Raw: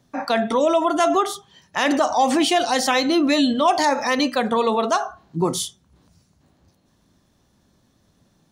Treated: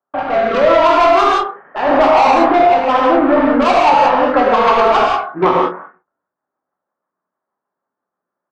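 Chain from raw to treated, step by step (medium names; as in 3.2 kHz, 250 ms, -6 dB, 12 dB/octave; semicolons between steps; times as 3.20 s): CVSD coder 16 kbps; high-pass 720 Hz 12 dB/octave; gate -60 dBFS, range -33 dB; steep low-pass 1.4 kHz 36 dB/octave; in parallel at -1 dB: compression 6:1, threshold -37 dBFS, peak gain reduction 18 dB; on the sum: saturation -24 dBFS, distortion -10 dB; rotary cabinet horn 0.8 Hz, later 6.3 Hz, at 2.72 s; doubling 27 ms -9 dB; gated-style reverb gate 210 ms flat, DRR -3 dB; loudness maximiser +18 dB; trim -1 dB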